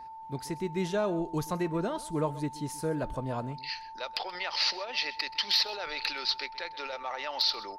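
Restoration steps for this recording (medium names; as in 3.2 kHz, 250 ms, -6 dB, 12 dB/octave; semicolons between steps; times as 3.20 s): band-stop 890 Hz, Q 30; inverse comb 129 ms -19 dB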